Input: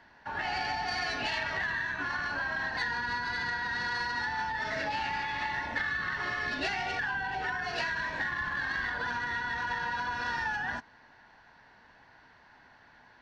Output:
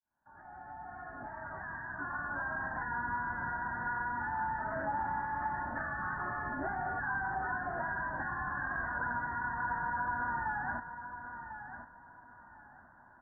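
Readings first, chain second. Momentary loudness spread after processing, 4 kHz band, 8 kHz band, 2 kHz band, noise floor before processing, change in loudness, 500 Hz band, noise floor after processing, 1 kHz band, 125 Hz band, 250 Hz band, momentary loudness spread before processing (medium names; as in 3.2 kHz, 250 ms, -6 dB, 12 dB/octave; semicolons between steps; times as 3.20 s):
14 LU, under -40 dB, under -30 dB, -5.5 dB, -59 dBFS, -4.5 dB, -3.0 dB, -58 dBFS, -0.5 dB, -0.5 dB, -1.0 dB, 2 LU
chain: fade-in on the opening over 2.85 s; steep low-pass 1.6 kHz 72 dB/octave; peaking EQ 450 Hz -12.5 dB 0.3 oct; feedback delay 1047 ms, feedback 24%, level -10 dB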